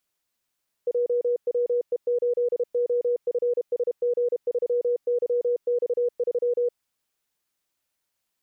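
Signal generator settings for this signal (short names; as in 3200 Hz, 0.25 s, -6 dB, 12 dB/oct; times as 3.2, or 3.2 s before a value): Morse "JWE8OFSG3YX3" 32 wpm 484 Hz -20 dBFS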